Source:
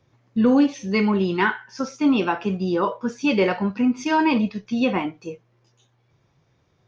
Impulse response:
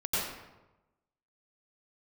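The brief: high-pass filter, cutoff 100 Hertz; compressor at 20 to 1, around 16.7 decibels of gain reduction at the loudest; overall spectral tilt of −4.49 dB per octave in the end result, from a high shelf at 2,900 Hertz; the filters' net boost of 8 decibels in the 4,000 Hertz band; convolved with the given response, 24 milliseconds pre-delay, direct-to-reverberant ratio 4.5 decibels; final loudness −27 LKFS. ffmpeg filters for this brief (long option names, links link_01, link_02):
-filter_complex "[0:a]highpass=100,highshelf=frequency=2900:gain=5,equalizer=frequency=4000:width_type=o:gain=7,acompressor=threshold=-30dB:ratio=20,asplit=2[link_01][link_02];[1:a]atrim=start_sample=2205,adelay=24[link_03];[link_02][link_03]afir=irnorm=-1:irlink=0,volume=-12.5dB[link_04];[link_01][link_04]amix=inputs=2:normalize=0,volume=6dB"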